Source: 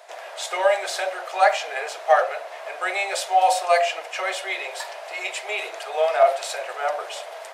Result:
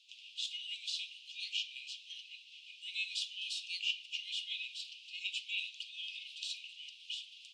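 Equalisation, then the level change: steep high-pass 2700 Hz 96 dB/oct; tape spacing loss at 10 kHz 27 dB; high shelf 4700 Hz -8 dB; +8.5 dB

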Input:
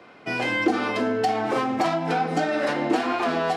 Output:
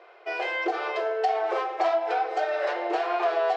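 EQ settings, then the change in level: brick-wall FIR band-pass 340–9100 Hz; air absorption 120 m; bell 680 Hz +7 dB 0.21 oct; -3.0 dB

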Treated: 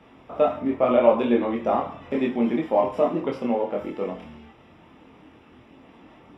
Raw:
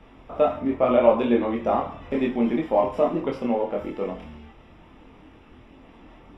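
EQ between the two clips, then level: HPF 100 Hz 12 dB/oct; 0.0 dB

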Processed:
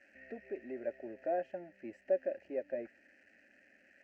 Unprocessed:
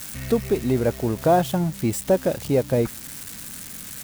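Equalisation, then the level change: vowel filter e; air absorption 170 m; fixed phaser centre 720 Hz, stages 8; -2.0 dB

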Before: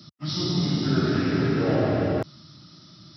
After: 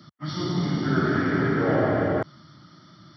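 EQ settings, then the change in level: polynomial smoothing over 41 samples; tilt shelf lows -7 dB, about 1400 Hz; low shelf 63 Hz -6.5 dB; +6.5 dB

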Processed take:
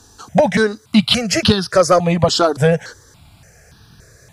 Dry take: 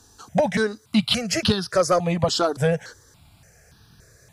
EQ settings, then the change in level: high shelf 10000 Hz -4.5 dB; +7.0 dB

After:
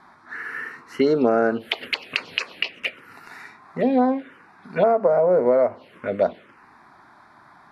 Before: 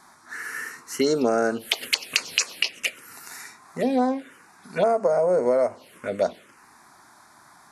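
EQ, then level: air absorption 400 m; high shelf 4100 Hz +8 dB; dynamic EQ 6700 Hz, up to -4 dB, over -49 dBFS, Q 0.96; +4.0 dB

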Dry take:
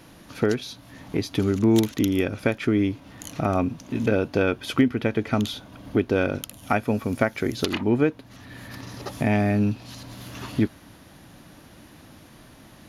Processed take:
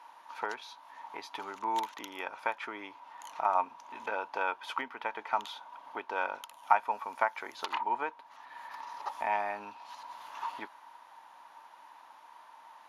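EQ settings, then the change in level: resonant high-pass 930 Hz, resonance Q 11; bell 4800 Hz -2 dB; high shelf 7500 Hz -12 dB; -8.5 dB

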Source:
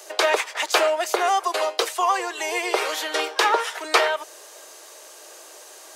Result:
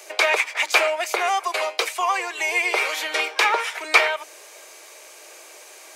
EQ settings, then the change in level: bell 2300 Hz +12.5 dB 0.29 oct; notches 60/120/180/240/300 Hz; dynamic EQ 320 Hz, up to -5 dB, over -37 dBFS, Q 1.1; -1.0 dB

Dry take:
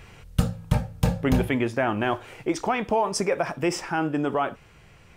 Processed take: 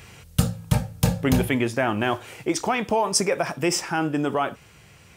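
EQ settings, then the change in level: HPF 73 Hz; low shelf 210 Hz +3.5 dB; high shelf 3800 Hz +11 dB; 0.0 dB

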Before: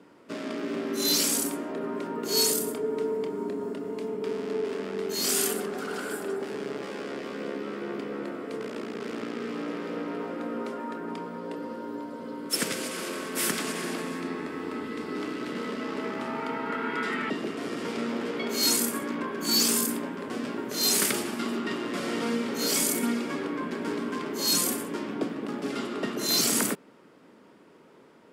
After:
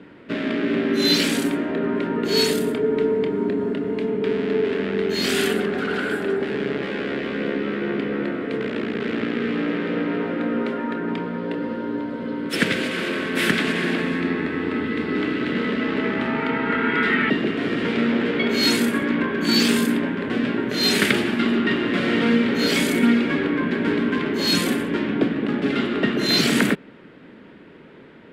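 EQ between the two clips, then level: tilt -3.5 dB/oct; band shelf 2500 Hz +12 dB; +4.0 dB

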